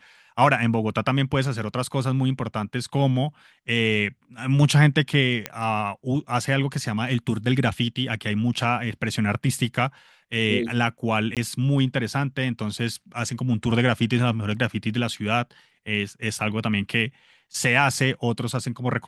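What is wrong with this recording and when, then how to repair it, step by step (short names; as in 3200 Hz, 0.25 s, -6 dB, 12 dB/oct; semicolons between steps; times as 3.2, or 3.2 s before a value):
5.46 pop -11 dBFS
11.35–11.37 gap 17 ms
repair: de-click; interpolate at 11.35, 17 ms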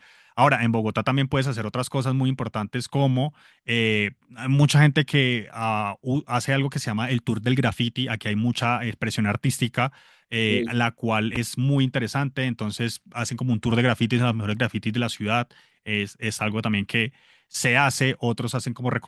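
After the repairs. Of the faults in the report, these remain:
none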